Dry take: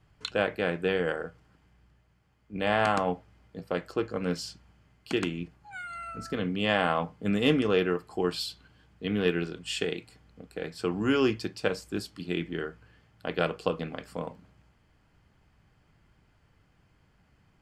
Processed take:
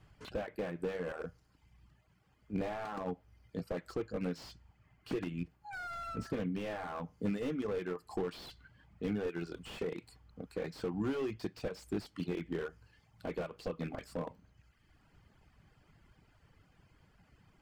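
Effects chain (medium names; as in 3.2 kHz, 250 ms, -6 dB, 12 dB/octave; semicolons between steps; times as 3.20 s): compression 12:1, threshold -31 dBFS, peak gain reduction 14 dB; reverb removal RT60 1 s; slew-rate limiter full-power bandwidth 10 Hz; trim +2 dB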